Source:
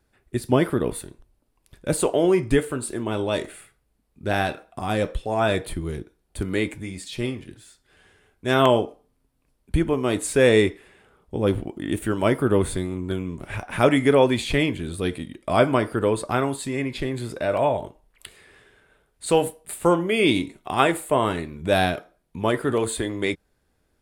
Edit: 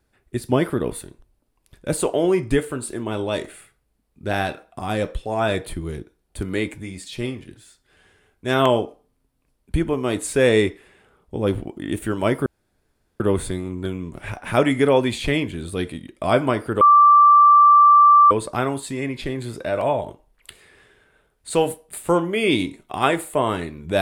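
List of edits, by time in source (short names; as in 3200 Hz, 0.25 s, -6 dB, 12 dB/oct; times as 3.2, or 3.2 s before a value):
12.46 insert room tone 0.74 s
16.07 add tone 1170 Hz -8 dBFS 1.50 s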